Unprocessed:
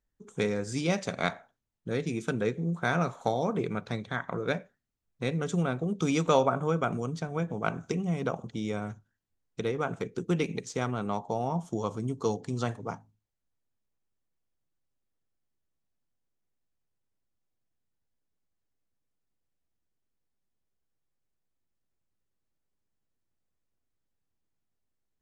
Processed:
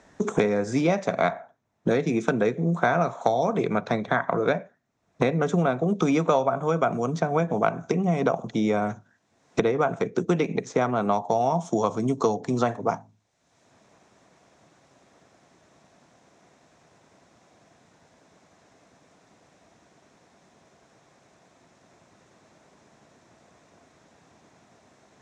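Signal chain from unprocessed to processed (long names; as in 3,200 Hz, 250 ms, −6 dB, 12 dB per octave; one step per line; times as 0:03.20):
loudspeaker in its box 150–6,500 Hz, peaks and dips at 670 Hz +8 dB, 1,000 Hz +3 dB, 3,000 Hz −7 dB, 4,600 Hz −8 dB
multiband upward and downward compressor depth 100%
level +5 dB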